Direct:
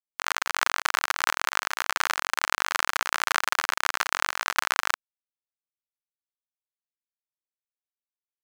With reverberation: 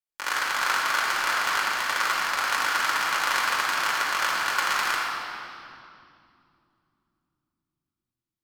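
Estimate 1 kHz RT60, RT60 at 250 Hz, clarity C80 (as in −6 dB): 2.3 s, 4.5 s, 0.0 dB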